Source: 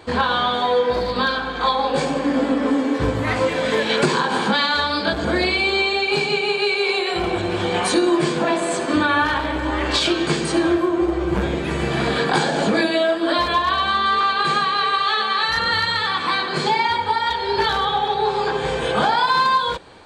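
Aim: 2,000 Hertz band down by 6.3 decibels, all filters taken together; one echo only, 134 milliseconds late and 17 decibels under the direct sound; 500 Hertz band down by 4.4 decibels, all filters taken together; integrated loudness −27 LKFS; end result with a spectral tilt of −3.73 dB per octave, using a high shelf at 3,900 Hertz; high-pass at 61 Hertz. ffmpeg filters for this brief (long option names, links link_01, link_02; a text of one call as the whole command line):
ffmpeg -i in.wav -af "highpass=61,equalizer=frequency=500:width_type=o:gain=-5.5,equalizer=frequency=2000:width_type=o:gain=-9,highshelf=frequency=3900:gain=4,aecho=1:1:134:0.141,volume=-5dB" out.wav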